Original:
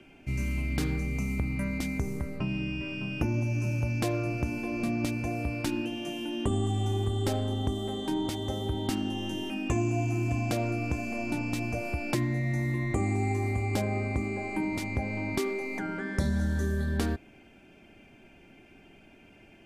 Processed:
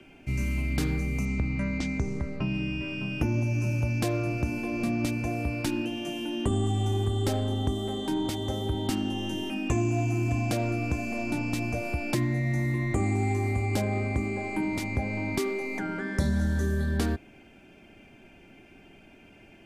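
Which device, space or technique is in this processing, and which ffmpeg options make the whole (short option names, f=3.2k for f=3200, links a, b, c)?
one-band saturation: -filter_complex "[0:a]asettb=1/sr,asplit=3[a][b][c];[a]atrim=end=1.254[d];[b]atrim=start=1.25:end=2.54,asetpts=PTS-STARTPTS,afade=t=in:d=0.004:c=qsin,afade=t=out:st=1.286:d=0.004:c=qsin,lowpass=f=7k:w=0.5412,lowpass=f=7k:w=1.3066[e];[c]atrim=start=2.536[f];[d][e]acrossfade=d=0.004:c1=hsin:c2=qsin[g];[g][f]acrossfade=d=0.004:c1=qsin:c2=hsin,acrossover=split=280|3600[h][i][j];[i]asoftclip=type=tanh:threshold=-25dB[k];[h][k][j]amix=inputs=3:normalize=0,volume=2dB"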